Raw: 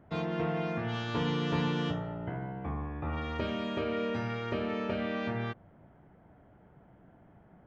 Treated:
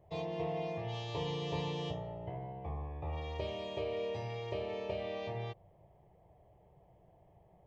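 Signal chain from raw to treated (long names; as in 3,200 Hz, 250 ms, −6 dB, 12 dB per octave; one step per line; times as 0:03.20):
phaser with its sweep stopped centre 600 Hz, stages 4
level −1.5 dB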